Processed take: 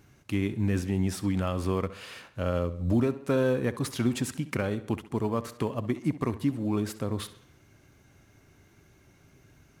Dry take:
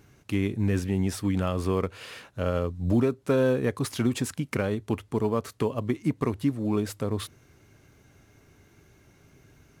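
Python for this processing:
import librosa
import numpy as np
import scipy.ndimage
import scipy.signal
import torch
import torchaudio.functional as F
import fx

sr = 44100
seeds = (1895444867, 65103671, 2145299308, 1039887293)

p1 = fx.peak_eq(x, sr, hz=440.0, db=-4.5, octaves=0.22)
p2 = p1 + fx.echo_tape(p1, sr, ms=67, feedback_pct=56, wet_db=-13.5, lp_hz=6000.0, drive_db=17.0, wow_cents=25, dry=0)
y = F.gain(torch.from_numpy(p2), -1.5).numpy()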